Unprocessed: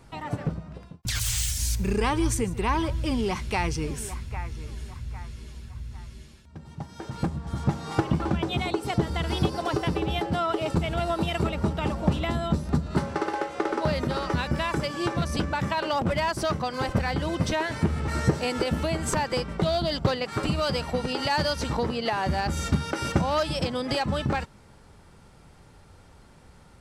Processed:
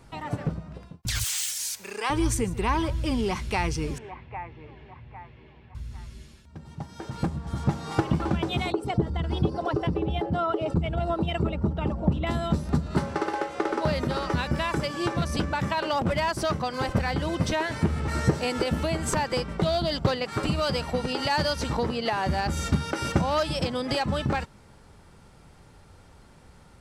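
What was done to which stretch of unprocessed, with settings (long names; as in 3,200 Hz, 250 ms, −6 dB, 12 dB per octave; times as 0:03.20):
0:01.24–0:02.10: high-pass filter 670 Hz
0:03.98–0:05.75: loudspeaker in its box 150–2,600 Hz, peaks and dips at 210 Hz −10 dB, 810 Hz +6 dB, 1,400 Hz −8 dB
0:08.72–0:12.27: spectral envelope exaggerated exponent 1.5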